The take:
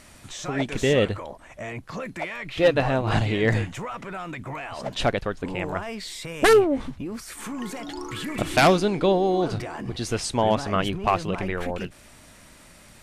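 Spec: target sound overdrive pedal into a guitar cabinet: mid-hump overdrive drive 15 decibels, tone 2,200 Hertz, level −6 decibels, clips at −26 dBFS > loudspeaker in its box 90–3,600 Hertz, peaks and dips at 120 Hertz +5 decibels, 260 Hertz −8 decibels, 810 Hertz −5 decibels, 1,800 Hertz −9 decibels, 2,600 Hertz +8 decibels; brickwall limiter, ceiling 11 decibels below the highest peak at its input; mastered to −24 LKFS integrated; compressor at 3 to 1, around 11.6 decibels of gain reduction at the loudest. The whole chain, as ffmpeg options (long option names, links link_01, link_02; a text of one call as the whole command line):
ffmpeg -i in.wav -filter_complex "[0:a]acompressor=threshold=-29dB:ratio=3,alimiter=level_in=2dB:limit=-24dB:level=0:latency=1,volume=-2dB,asplit=2[link_01][link_02];[link_02]highpass=frequency=720:poles=1,volume=15dB,asoftclip=type=tanh:threshold=-26dB[link_03];[link_01][link_03]amix=inputs=2:normalize=0,lowpass=frequency=2200:poles=1,volume=-6dB,highpass=90,equalizer=frequency=120:width_type=q:width=4:gain=5,equalizer=frequency=260:width_type=q:width=4:gain=-8,equalizer=frequency=810:width_type=q:width=4:gain=-5,equalizer=frequency=1800:width_type=q:width=4:gain=-9,equalizer=frequency=2600:width_type=q:width=4:gain=8,lowpass=frequency=3600:width=0.5412,lowpass=frequency=3600:width=1.3066,volume=11.5dB" out.wav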